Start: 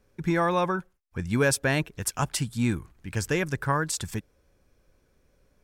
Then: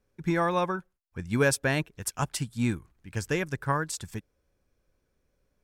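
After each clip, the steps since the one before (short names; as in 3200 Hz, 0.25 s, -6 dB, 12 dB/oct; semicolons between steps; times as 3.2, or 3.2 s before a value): upward expander 1.5:1, over -37 dBFS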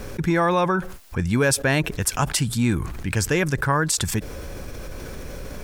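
fast leveller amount 70%; gain +2.5 dB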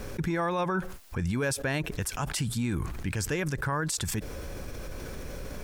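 limiter -16.5 dBFS, peak gain reduction 10 dB; gain -4 dB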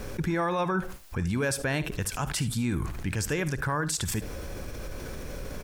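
early reflections 54 ms -18 dB, 74 ms -16.5 dB; gain +1 dB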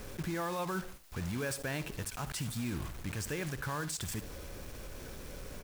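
block floating point 3-bit; gain -8.5 dB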